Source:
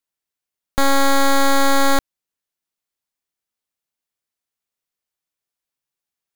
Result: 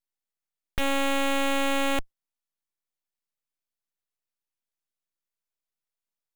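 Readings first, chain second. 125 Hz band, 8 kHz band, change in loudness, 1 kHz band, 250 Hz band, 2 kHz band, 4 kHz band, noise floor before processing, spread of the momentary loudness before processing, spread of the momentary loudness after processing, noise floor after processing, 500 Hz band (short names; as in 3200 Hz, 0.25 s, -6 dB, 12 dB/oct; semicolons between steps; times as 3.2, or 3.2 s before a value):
-9.0 dB, -12.0 dB, -8.5 dB, -11.5 dB, -8.0 dB, -7.0 dB, -7.5 dB, under -85 dBFS, 6 LU, 6 LU, under -85 dBFS, -8.0 dB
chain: tilt shelf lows +3.5 dB, about 840 Hz; added harmonics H 7 -8 dB, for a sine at -9 dBFS; full-wave rectifier; gain -6.5 dB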